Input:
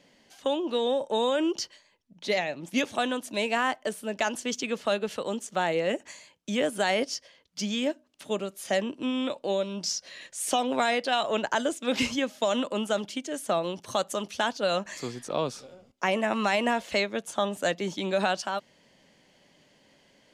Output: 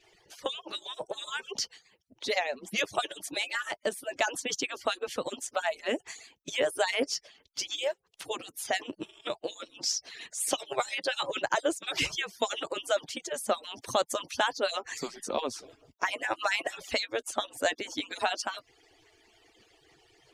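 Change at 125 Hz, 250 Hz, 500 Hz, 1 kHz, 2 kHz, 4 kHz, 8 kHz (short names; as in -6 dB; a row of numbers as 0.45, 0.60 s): -12.0, -11.0, -5.0, -4.0, -1.5, -0.5, +1.0 dB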